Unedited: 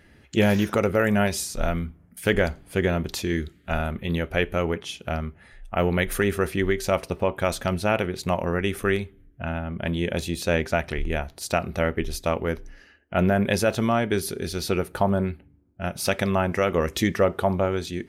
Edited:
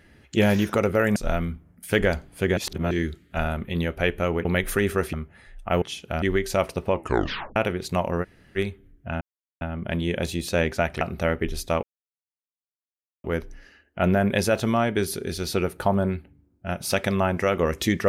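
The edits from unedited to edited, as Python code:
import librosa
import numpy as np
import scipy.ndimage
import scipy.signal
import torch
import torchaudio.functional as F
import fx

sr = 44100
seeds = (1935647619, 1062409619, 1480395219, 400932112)

y = fx.edit(x, sr, fx.cut(start_s=1.16, length_s=0.34),
    fx.reverse_span(start_s=2.91, length_s=0.34),
    fx.swap(start_s=4.79, length_s=0.4, other_s=5.88, other_length_s=0.68),
    fx.tape_stop(start_s=7.27, length_s=0.63),
    fx.room_tone_fill(start_s=8.57, length_s=0.34, crossfade_s=0.04),
    fx.insert_silence(at_s=9.55, length_s=0.4),
    fx.cut(start_s=10.95, length_s=0.62),
    fx.insert_silence(at_s=12.39, length_s=1.41), tone=tone)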